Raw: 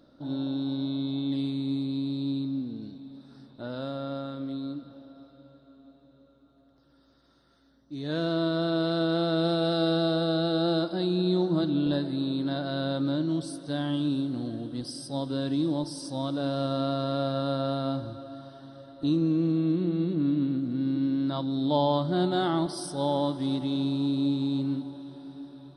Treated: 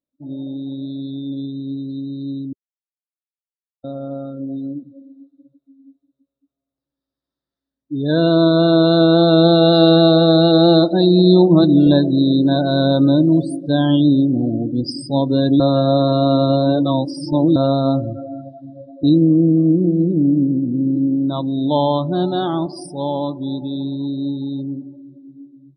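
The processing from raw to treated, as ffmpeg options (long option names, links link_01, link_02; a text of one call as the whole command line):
ffmpeg -i in.wav -filter_complex "[0:a]asettb=1/sr,asplit=3[link_01][link_02][link_03];[link_01]atrim=end=12.764[link_04];[link_02]atrim=start=12.76:end=13.42,asetpts=PTS-STARTPTS,afade=type=in:duration=0.004:curve=qsin,afade=type=out:start_time=0.656:duration=0.004:curve=qsin,acrusher=bits=8:dc=4:mix=0:aa=0.000001[link_05];[link_03]atrim=start=13.416[link_06];[link_04][link_05]acrossfade=duration=0.004:curve1=hsin:curve2=qsin[link_07];[link_07][link_06]acrossfade=duration=0.004:curve1=qsin:curve2=hsin,asplit=5[link_08][link_09][link_10][link_11][link_12];[link_08]atrim=end=2.53,asetpts=PTS-STARTPTS,afade=type=out:start_time=2.526:duration=0.004:curve=hsin[link_13];[link_09]atrim=start=2.53:end=3.84,asetpts=PTS-STARTPTS,volume=0[link_14];[link_10]atrim=start=3.84:end=15.602,asetpts=PTS-STARTPTS,afade=type=in:duration=0.004:curve=hsin[link_15];[link_11]atrim=start=15.598:end=17.562,asetpts=PTS-STARTPTS,areverse[link_16];[link_12]atrim=start=17.558[link_17];[link_13][link_14][link_15]concat=n=3:v=0:a=1[link_18];[link_18][link_16]acrossfade=duration=0.004:curve1=hsin:curve2=hsin[link_19];[link_19][link_17]acrossfade=duration=0.004:curve1=hsin:curve2=hsin,afftdn=noise_reduction=36:noise_floor=-36,bandreject=frequency=1400:width=6.8,dynaudnorm=framelen=670:gausssize=17:maxgain=13dB,volume=2.5dB" out.wav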